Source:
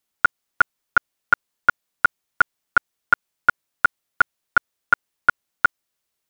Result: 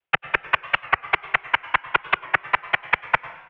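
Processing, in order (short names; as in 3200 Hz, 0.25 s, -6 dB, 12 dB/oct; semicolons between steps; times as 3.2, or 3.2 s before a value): dynamic EQ 600 Hz, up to +6 dB, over -38 dBFS, Q 1.8; tempo 1.8×; noise vocoder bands 4; mistuned SSB -150 Hz 180–3200 Hz; bell 230 Hz -12 dB 0.68 oct; reverse; compressor 6:1, threshold -23 dBFS, peak gain reduction 14 dB; reverse; plate-style reverb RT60 1 s, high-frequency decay 0.8×, pre-delay 85 ms, DRR 15.5 dB; record warp 45 rpm, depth 100 cents; gain +6.5 dB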